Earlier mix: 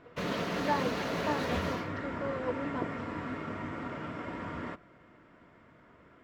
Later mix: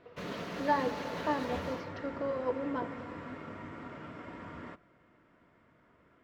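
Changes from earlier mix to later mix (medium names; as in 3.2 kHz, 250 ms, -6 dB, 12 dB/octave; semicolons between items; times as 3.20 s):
background -6.5 dB; reverb: on, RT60 2.9 s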